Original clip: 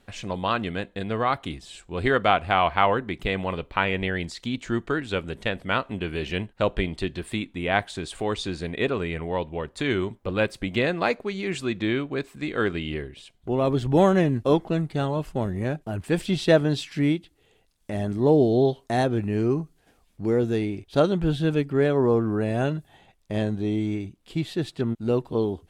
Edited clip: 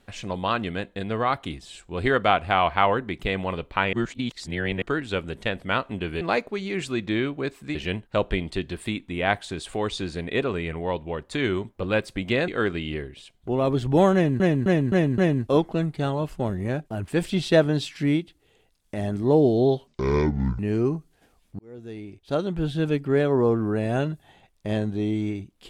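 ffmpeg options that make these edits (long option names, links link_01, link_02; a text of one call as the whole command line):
ffmpeg -i in.wav -filter_complex "[0:a]asplit=13[link_01][link_02][link_03][link_04][link_05][link_06][link_07][link_08][link_09][link_10][link_11][link_12][link_13];[link_01]atrim=end=3.932[link_14];[link_02]atrim=start=3.928:end=4.822,asetpts=PTS-STARTPTS,areverse[link_15];[link_03]atrim=start=4.818:end=6.212[link_16];[link_04]atrim=start=10.938:end=12.482[link_17];[link_05]atrim=start=6.208:end=10.942[link_18];[link_06]atrim=start=12.478:end=14.402[link_19];[link_07]atrim=start=14.138:end=14.402[link_20];[link_08]atrim=start=14.138:end=14.402[link_21];[link_09]atrim=start=14.138:end=14.402[link_22];[link_10]atrim=start=14.138:end=18.834[link_23];[link_11]atrim=start=18.83:end=19.24,asetpts=PTS-STARTPTS,asetrate=25137,aresample=44100,atrim=end_sample=31721,asetpts=PTS-STARTPTS[link_24];[link_12]atrim=start=19.236:end=20.24,asetpts=PTS-STARTPTS,afade=type=out:start_time=1:duration=0.004:curve=hsin[link_25];[link_13]atrim=start=20.24,asetpts=PTS-STARTPTS,afade=type=in:duration=1.42[link_26];[link_14][link_15]acrossfade=duration=0.004:curve1=hsin:curve2=hsin[link_27];[link_27][link_16]acrossfade=duration=0.004:curve1=hsin:curve2=hsin[link_28];[link_28][link_17]acrossfade=duration=0.004:curve1=hsin:curve2=hsin[link_29];[link_29][link_18]acrossfade=duration=0.004:curve1=hsin:curve2=hsin[link_30];[link_30][link_19]acrossfade=duration=0.004:curve1=hsin:curve2=hsin[link_31];[link_31][link_20]acrossfade=duration=0.004:curve1=hsin:curve2=hsin[link_32];[link_32][link_21]acrossfade=duration=0.004:curve1=hsin:curve2=hsin[link_33];[link_33][link_22]acrossfade=duration=0.004:curve1=hsin:curve2=hsin[link_34];[link_34][link_23]acrossfade=duration=0.004:curve1=hsin:curve2=hsin[link_35];[link_35][link_24]acrossfade=duration=0.004:curve1=hsin:curve2=hsin[link_36];[link_25][link_26]concat=n=2:v=0:a=1[link_37];[link_36][link_37]acrossfade=duration=0.004:curve1=hsin:curve2=hsin" out.wav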